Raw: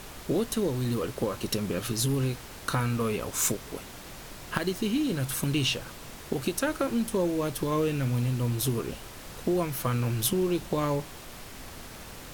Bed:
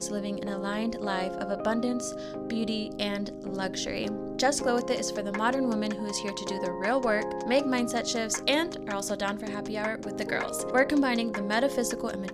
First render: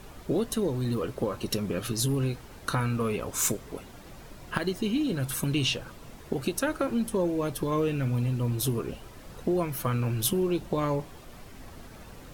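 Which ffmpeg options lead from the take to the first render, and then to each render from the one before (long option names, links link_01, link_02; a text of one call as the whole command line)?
ffmpeg -i in.wav -af "afftdn=noise_reduction=9:noise_floor=-44" out.wav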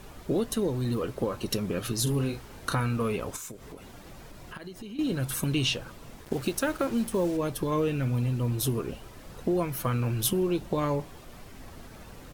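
ffmpeg -i in.wav -filter_complex "[0:a]asplit=3[link_01][link_02][link_03];[link_01]afade=type=out:start_time=2.06:duration=0.02[link_04];[link_02]asplit=2[link_05][link_06];[link_06]adelay=35,volume=-6.5dB[link_07];[link_05][link_07]amix=inputs=2:normalize=0,afade=type=in:start_time=2.06:duration=0.02,afade=type=out:start_time=2.73:duration=0.02[link_08];[link_03]afade=type=in:start_time=2.73:duration=0.02[link_09];[link_04][link_08][link_09]amix=inputs=3:normalize=0,asettb=1/sr,asplit=3[link_10][link_11][link_12];[link_10]atrim=end=3.364[link_13];[link_11]atrim=start=3.36:end=4.99,asetpts=PTS-STARTPTS,afade=type=in:duration=0.004:curve=qsin,afade=type=out:start_time=1.626:duration=0.004:curve=qsin,acompressor=threshold=-40dB:ratio=4:attack=3.2:release=140:knee=1:detection=peak[link_14];[link_12]atrim=start=4.986[link_15];[link_13][link_14]acrossfade=duration=0.004:curve1=hsin:curve2=qsin[link_16];[link_16][link_15]acrossfade=duration=0.004:curve1=qsin:curve2=hsin,asettb=1/sr,asplit=3[link_17][link_18][link_19];[link_17]atrim=end=6.244[link_20];[link_18]atrim=start=6.24:end=7.37,asetpts=PTS-STARTPTS,afade=type=in:duration=0.004:curve=qsin,afade=type=out:start_time=1.126:duration=0.004:curve=qsin,acrusher=bits=6:mix=0:aa=0.5[link_21];[link_19]atrim=start=7.366[link_22];[link_20][link_21]acrossfade=duration=0.004:curve1=hsin:curve2=qsin[link_23];[link_23][link_22]acrossfade=duration=0.004:curve1=qsin:curve2=hsin" out.wav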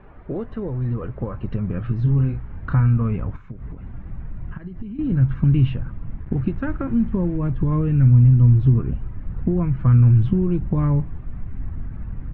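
ffmpeg -i in.wav -af "lowpass=frequency=2000:width=0.5412,lowpass=frequency=2000:width=1.3066,asubboost=boost=11.5:cutoff=150" out.wav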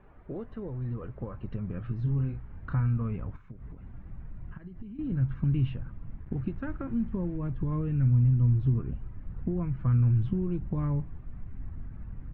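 ffmpeg -i in.wav -af "volume=-10dB" out.wav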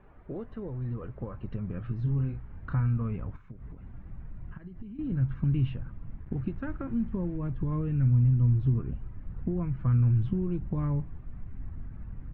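ffmpeg -i in.wav -af anull out.wav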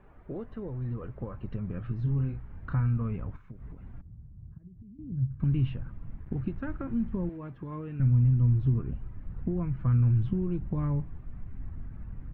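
ffmpeg -i in.wav -filter_complex "[0:a]asettb=1/sr,asplit=3[link_01][link_02][link_03];[link_01]atrim=end=4.014[link_04];[link_02]atrim=start=4.01:end=5.4,asetpts=PTS-STARTPTS,afade=type=in:duration=0.004:curve=qsin,afade=type=out:start_time=1.386:duration=0.004:curve=qsin,bandpass=frequency=100:width_type=q:width=1.2[link_05];[link_03]atrim=start=5.396[link_06];[link_04][link_05]acrossfade=duration=0.004:curve1=hsin:curve2=qsin[link_07];[link_07][link_06]acrossfade=duration=0.004:curve1=qsin:curve2=hsin,asettb=1/sr,asplit=3[link_08][link_09][link_10];[link_08]atrim=end=7.294[link_11];[link_09]atrim=start=7.29:end=8,asetpts=PTS-STARTPTS,afade=type=in:duration=0.004:curve=qsin,afade=type=out:start_time=0.706:duration=0.004:curve=qsin,highpass=frequency=440:poles=1[link_12];[link_10]atrim=start=7.996[link_13];[link_11][link_12]acrossfade=duration=0.004:curve1=hsin:curve2=qsin[link_14];[link_14][link_13]acrossfade=duration=0.004:curve1=qsin:curve2=hsin" out.wav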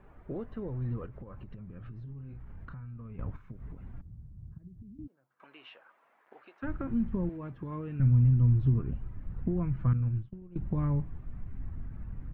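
ffmpeg -i in.wav -filter_complex "[0:a]asettb=1/sr,asplit=3[link_01][link_02][link_03];[link_01]atrim=end=1.054[link_04];[link_02]atrim=start=1.05:end=3.19,asetpts=PTS-STARTPTS,afade=type=in:duration=0.004:curve=qsin,afade=type=out:start_time=2.136:duration=0.004:curve=qsin,acompressor=threshold=-40dB:ratio=16:attack=3.2:release=140:knee=1:detection=peak[link_05];[link_03]atrim=start=3.186[link_06];[link_04][link_05]acrossfade=duration=0.004:curve1=hsin:curve2=qsin[link_07];[link_07][link_06]acrossfade=duration=0.004:curve1=qsin:curve2=hsin,asplit=3[link_08][link_09][link_10];[link_08]afade=type=out:start_time=5.06:duration=0.02[link_11];[link_09]highpass=frequency=590:width=0.5412,highpass=frequency=590:width=1.3066,afade=type=in:start_time=5.06:duration=0.02,afade=type=out:start_time=6.62:duration=0.02[link_12];[link_10]afade=type=in:start_time=6.62:duration=0.02[link_13];[link_11][link_12][link_13]amix=inputs=3:normalize=0,asettb=1/sr,asplit=3[link_14][link_15][link_16];[link_14]atrim=end=9.934[link_17];[link_15]atrim=start=9.93:end=10.56,asetpts=PTS-STARTPTS,afade=type=in:duration=0.004:curve=qsin,afade=type=out:start_time=0.626:duration=0.004:curve=qsin,agate=range=-33dB:threshold=-17dB:ratio=3:release=100:detection=peak[link_18];[link_16]atrim=start=10.556[link_19];[link_17][link_18]acrossfade=duration=0.004:curve1=hsin:curve2=qsin[link_20];[link_20][link_19]acrossfade=duration=0.004:curve1=qsin:curve2=hsin" out.wav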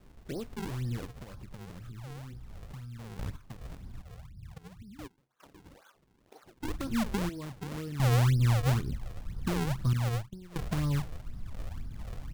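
ffmpeg -i in.wav -af "acrusher=samples=42:mix=1:aa=0.000001:lfo=1:lforange=67.2:lforate=2,asoftclip=type=tanh:threshold=-18dB" out.wav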